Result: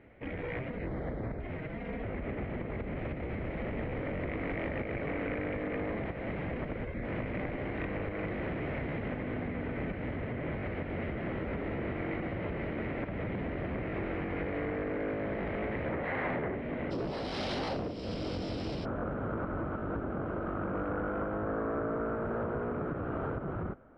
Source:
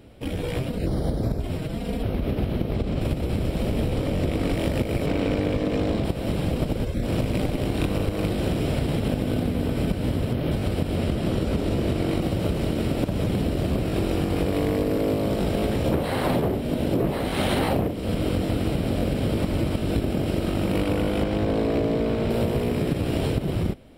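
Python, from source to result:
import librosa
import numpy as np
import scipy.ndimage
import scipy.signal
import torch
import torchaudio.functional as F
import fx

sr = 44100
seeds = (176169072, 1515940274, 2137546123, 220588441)

y = fx.peak_eq(x, sr, hz=720.0, db=5.0, octaves=2.9)
y = 10.0 ** (-18.0 / 20.0) * np.tanh(y / 10.0 ** (-18.0 / 20.0))
y = fx.ladder_lowpass(y, sr, hz=fx.steps((0.0, 2200.0), (16.9, 5600.0), (18.84, 1500.0)), resonance_pct=70)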